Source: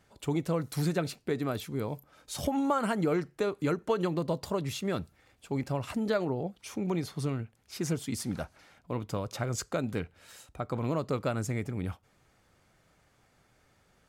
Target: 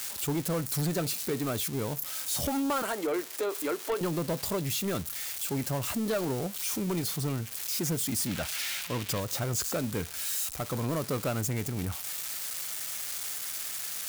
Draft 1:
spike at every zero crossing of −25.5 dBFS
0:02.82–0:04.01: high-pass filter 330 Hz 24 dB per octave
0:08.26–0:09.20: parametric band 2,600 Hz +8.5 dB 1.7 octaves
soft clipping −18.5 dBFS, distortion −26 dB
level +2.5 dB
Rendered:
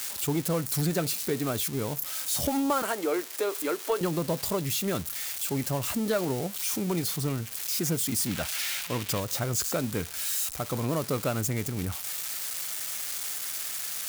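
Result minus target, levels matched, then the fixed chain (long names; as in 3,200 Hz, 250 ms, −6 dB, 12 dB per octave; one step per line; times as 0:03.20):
soft clipping: distortion −11 dB
spike at every zero crossing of −25.5 dBFS
0:02.82–0:04.01: high-pass filter 330 Hz 24 dB per octave
0:08.26–0:09.20: parametric band 2,600 Hz +8.5 dB 1.7 octaves
soft clipping −26.5 dBFS, distortion −15 dB
level +2.5 dB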